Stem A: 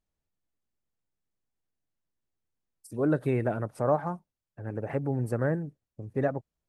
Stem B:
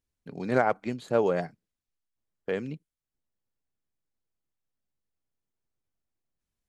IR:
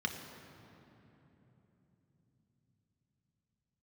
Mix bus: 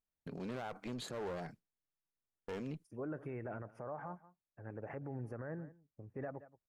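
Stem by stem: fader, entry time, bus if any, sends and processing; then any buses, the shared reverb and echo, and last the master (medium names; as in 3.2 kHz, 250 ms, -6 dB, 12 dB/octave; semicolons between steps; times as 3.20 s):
-8.0 dB, 0.00 s, no send, echo send -22 dB, boxcar filter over 11 samples; tilt shelf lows -4.5 dB, about 740 Hz
+2.0 dB, 0.00 s, no send, no echo send, gate with hold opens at -43 dBFS; peak limiter -21 dBFS, peak gain reduction 11.5 dB; one-sided clip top -39.5 dBFS, bottom -26 dBFS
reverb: none
echo: delay 175 ms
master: peak limiter -34 dBFS, peak gain reduction 11.5 dB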